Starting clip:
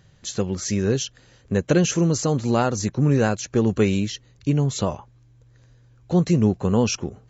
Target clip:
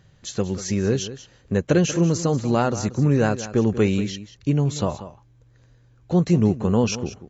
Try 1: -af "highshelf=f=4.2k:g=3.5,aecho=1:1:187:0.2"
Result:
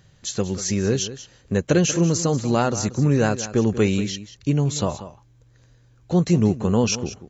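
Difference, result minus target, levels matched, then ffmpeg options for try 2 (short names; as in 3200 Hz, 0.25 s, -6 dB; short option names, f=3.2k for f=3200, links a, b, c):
8000 Hz band +5.0 dB
-af "highshelf=f=4.2k:g=-4,aecho=1:1:187:0.2"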